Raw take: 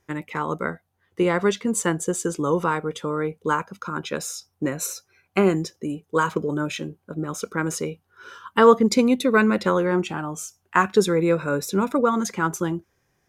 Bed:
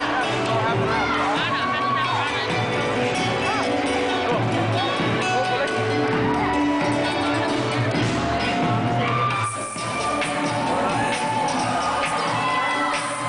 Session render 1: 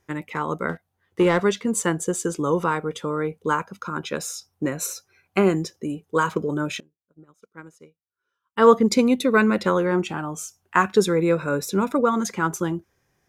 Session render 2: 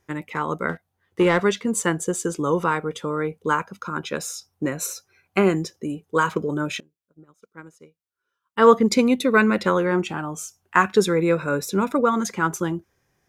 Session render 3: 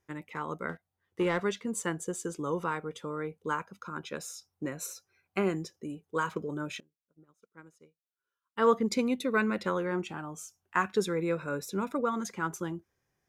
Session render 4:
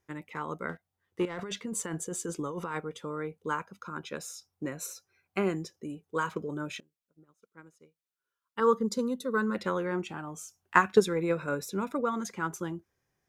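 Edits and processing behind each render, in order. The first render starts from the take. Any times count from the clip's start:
0.69–1.40 s: waveshaping leveller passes 1; 6.80–8.67 s: upward expansion 2.5:1, over -36 dBFS
dynamic bell 2.1 kHz, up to +3 dB, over -32 dBFS, Q 0.94
trim -10.5 dB
1.25–2.81 s: compressor with a negative ratio -35 dBFS; 8.60–9.55 s: static phaser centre 470 Hz, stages 8; 10.27–11.69 s: transient shaper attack +8 dB, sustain +2 dB

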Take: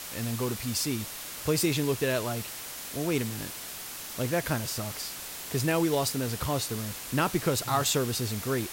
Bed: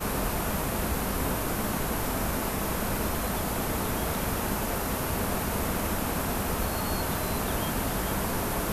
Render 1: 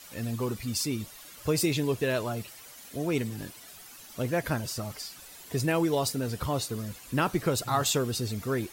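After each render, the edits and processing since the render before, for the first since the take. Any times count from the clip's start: noise reduction 12 dB, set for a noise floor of -40 dBFS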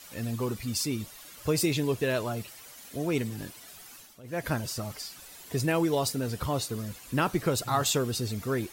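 3.96–4.48 s: dip -20 dB, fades 0.25 s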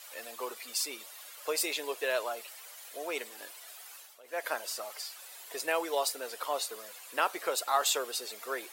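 high-pass 510 Hz 24 dB/octave; peaking EQ 5.8 kHz -3 dB 0.48 oct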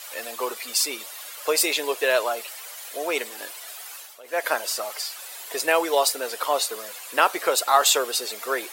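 trim +10 dB

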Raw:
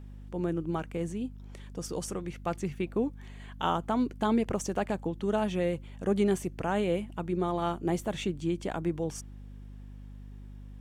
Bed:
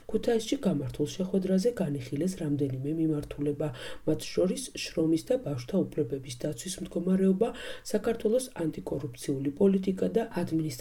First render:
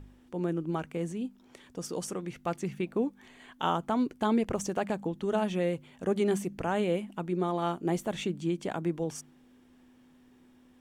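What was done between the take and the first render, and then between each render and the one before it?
de-hum 50 Hz, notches 4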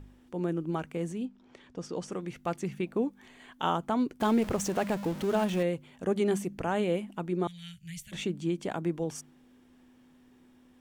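1.25–2.12 s: distance through air 100 m; 4.20–5.63 s: jump at every zero crossing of -36 dBFS; 7.47–8.12 s: inverse Chebyshev band-stop 250–1200 Hz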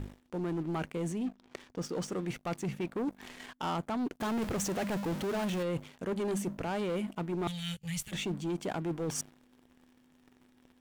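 waveshaping leveller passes 3; reverse; compression 4:1, threshold -34 dBFS, peak gain reduction 13 dB; reverse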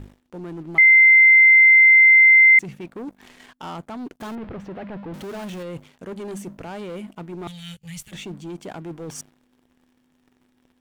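0.78–2.59 s: bleep 2.08 kHz -8 dBFS; 4.35–5.14 s: distance through air 410 m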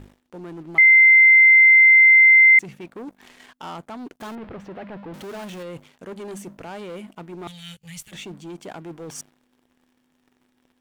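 bass shelf 250 Hz -6 dB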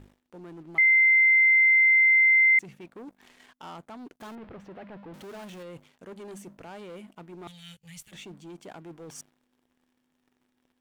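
trim -7.5 dB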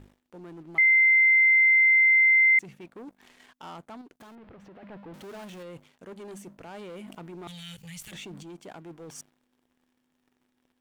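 4.01–4.83 s: compression 5:1, threshold -47 dBFS; 6.74–8.43 s: level flattener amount 70%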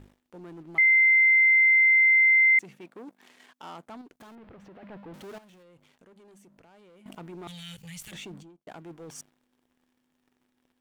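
2.36–3.88 s: high-pass 180 Hz; 5.38–7.06 s: compression 5:1, threshold -55 dBFS; 8.26–8.67 s: studio fade out

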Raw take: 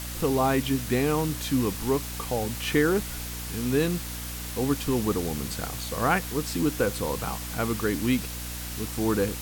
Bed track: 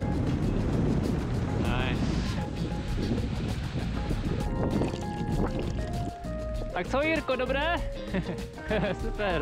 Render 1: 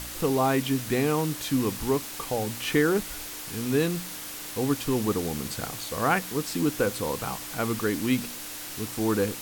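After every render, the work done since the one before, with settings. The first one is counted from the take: de-hum 60 Hz, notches 4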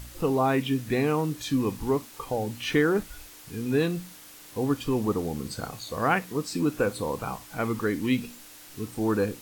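noise print and reduce 10 dB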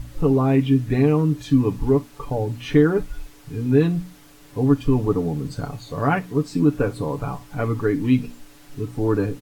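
tilt EQ -2.5 dB/octave; comb 7 ms, depth 69%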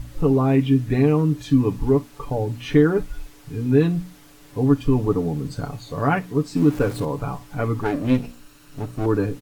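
6.56–7.05 s: jump at every zero crossing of -32 dBFS; 7.83–9.06 s: comb filter that takes the minimum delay 0.72 ms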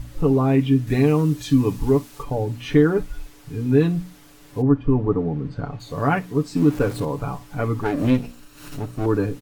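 0.87–2.23 s: treble shelf 3.1 kHz +7.5 dB; 4.61–5.79 s: low-pass 1.4 kHz -> 2.8 kHz; 7.97–8.83 s: swell ahead of each attack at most 77 dB/s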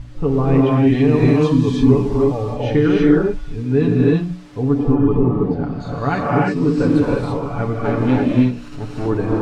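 distance through air 93 m; gated-style reverb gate 360 ms rising, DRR -3.5 dB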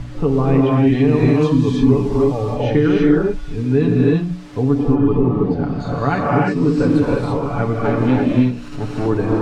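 three bands compressed up and down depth 40%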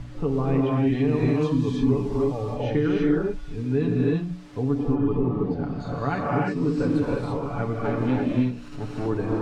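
trim -8 dB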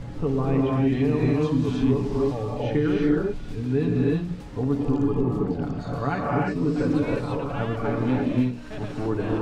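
add bed track -11 dB

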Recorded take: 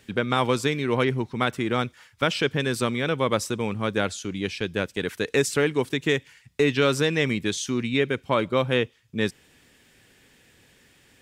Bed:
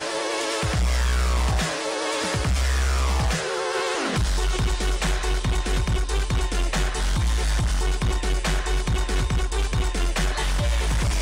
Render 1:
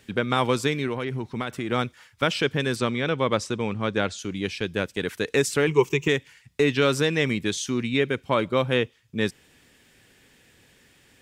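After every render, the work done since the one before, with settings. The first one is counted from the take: 0.87–1.72 s: compression, threshold -24 dBFS; 2.76–4.19 s: low-pass 6.6 kHz; 5.67–6.08 s: rippled EQ curve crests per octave 0.75, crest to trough 14 dB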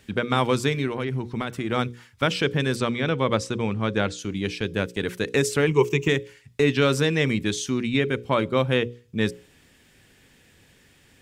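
bass shelf 210 Hz +5.5 dB; hum notches 60/120/180/240/300/360/420/480/540 Hz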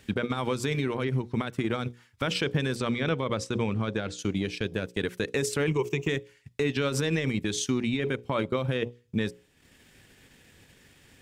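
peak limiter -18.5 dBFS, peak gain reduction 11 dB; transient shaper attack +3 dB, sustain -9 dB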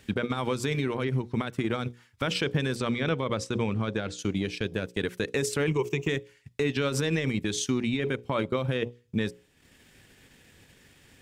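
no audible change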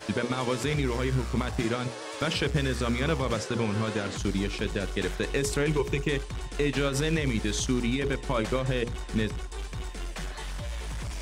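add bed -12.5 dB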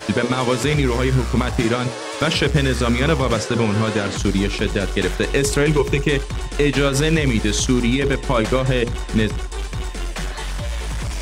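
trim +9.5 dB

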